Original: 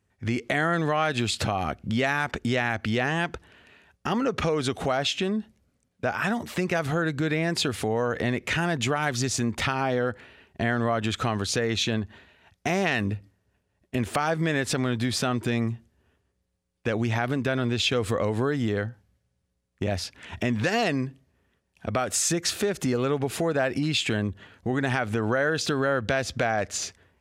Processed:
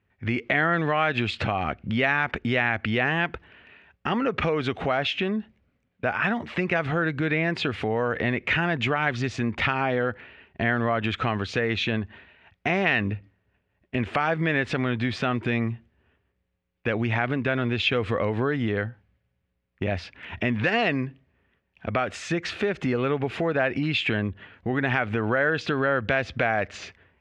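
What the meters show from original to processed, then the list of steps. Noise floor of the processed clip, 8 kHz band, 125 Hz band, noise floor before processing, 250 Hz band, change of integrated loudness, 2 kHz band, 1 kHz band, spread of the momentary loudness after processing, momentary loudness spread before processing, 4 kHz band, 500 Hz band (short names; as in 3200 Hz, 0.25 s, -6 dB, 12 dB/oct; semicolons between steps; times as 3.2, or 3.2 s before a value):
-75 dBFS, -17.5 dB, 0.0 dB, -75 dBFS, 0.0 dB, +1.0 dB, +3.5 dB, +1.0 dB, 8 LU, 7 LU, -2.0 dB, +0.5 dB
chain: synth low-pass 2500 Hz, resonance Q 1.7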